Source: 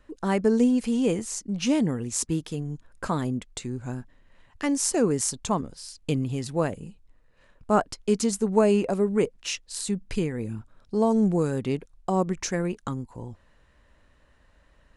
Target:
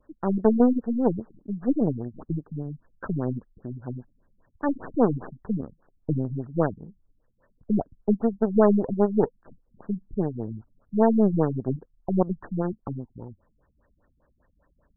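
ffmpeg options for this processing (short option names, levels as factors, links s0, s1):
-af "aeval=exprs='0.447*(cos(1*acos(clip(val(0)/0.447,-1,1)))-cos(1*PI/2))+0.0316*(cos(4*acos(clip(val(0)/0.447,-1,1)))-cos(4*PI/2))+0.0282*(cos(7*acos(clip(val(0)/0.447,-1,1)))-cos(7*PI/2))+0.0251*(cos(8*acos(clip(val(0)/0.447,-1,1)))-cos(8*PI/2))':c=same,lowshelf=f=74:g=-7,afftfilt=real='re*lt(b*sr/1024,220*pow(1900/220,0.5+0.5*sin(2*PI*5*pts/sr)))':imag='im*lt(b*sr/1024,220*pow(1900/220,0.5+0.5*sin(2*PI*5*pts/sr)))':win_size=1024:overlap=0.75,volume=1.41"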